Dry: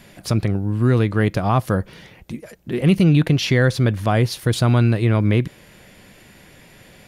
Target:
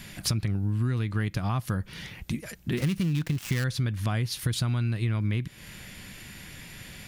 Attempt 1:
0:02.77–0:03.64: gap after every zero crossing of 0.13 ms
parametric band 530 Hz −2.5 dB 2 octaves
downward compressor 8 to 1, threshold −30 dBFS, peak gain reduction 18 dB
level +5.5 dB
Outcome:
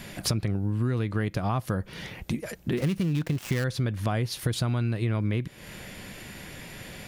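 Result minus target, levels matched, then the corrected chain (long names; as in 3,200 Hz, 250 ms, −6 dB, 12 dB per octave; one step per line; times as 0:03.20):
500 Hz band +6.0 dB
0:02.77–0:03.64: gap after every zero crossing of 0.13 ms
parametric band 530 Hz −12 dB 2 octaves
downward compressor 8 to 1, threshold −30 dBFS, peak gain reduction 15.5 dB
level +5.5 dB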